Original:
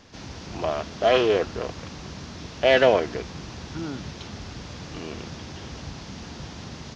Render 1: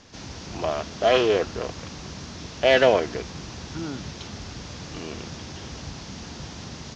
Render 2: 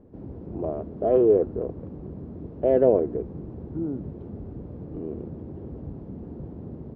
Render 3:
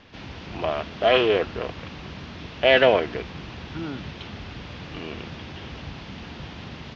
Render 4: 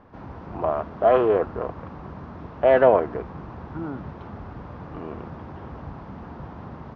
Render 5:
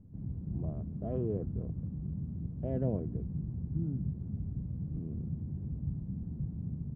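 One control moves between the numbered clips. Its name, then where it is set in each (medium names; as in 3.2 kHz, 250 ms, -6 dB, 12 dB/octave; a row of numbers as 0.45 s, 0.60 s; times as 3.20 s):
resonant low-pass, frequency: 7.6 kHz, 410 Hz, 3 kHz, 1.1 kHz, 160 Hz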